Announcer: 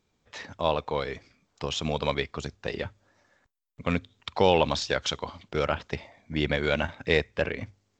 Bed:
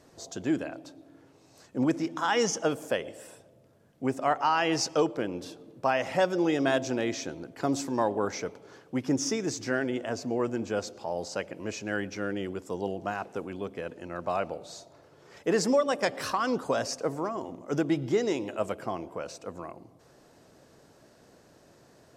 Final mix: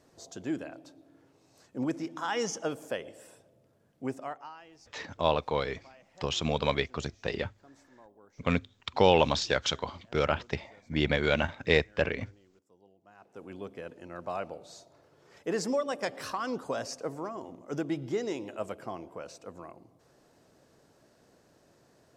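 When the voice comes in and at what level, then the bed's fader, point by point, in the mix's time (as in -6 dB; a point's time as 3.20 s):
4.60 s, -0.5 dB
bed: 4.11 s -5.5 dB
4.71 s -29.5 dB
13.02 s -29.5 dB
13.51 s -5.5 dB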